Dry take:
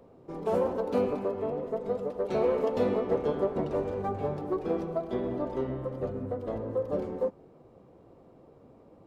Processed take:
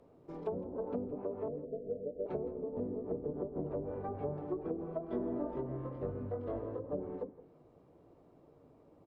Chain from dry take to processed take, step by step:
0:01.48–0:02.26: elliptic low-pass filter 600 Hz, stop band 40 dB
treble cut that deepens with the level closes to 330 Hz, closed at −24 dBFS
0:05.06–0:06.86: double-tracking delay 21 ms −2.5 dB
single-tap delay 165 ms −18 dB
on a send at −14 dB: convolution reverb RT60 0.10 s, pre-delay 3 ms
on the sum: level −7 dB

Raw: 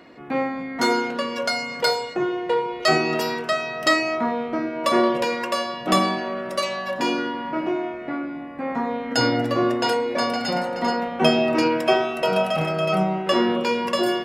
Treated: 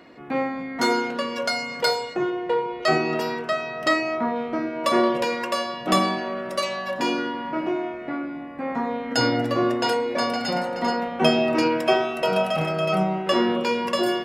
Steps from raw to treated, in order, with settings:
0:02.30–0:04.36: high-shelf EQ 3,700 Hz −8 dB
level −1 dB

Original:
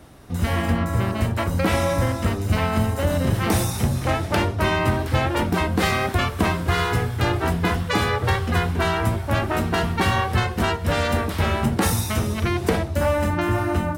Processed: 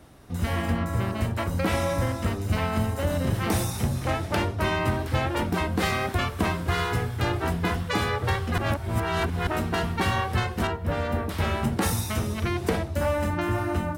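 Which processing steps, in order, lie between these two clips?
0:08.58–0:09.47: reverse
0:10.67–0:11.29: parametric band 6,900 Hz −12 dB 2.9 octaves
level −4.5 dB

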